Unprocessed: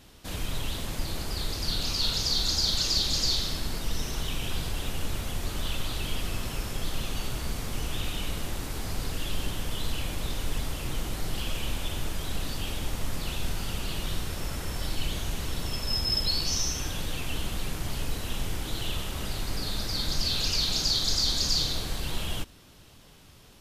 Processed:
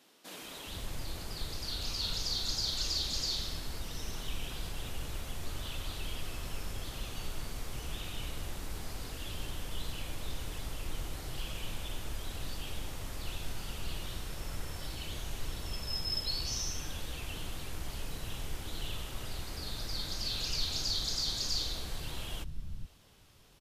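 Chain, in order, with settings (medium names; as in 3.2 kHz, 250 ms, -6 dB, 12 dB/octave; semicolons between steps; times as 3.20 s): bands offset in time highs, lows 420 ms, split 210 Hz; trim -7.5 dB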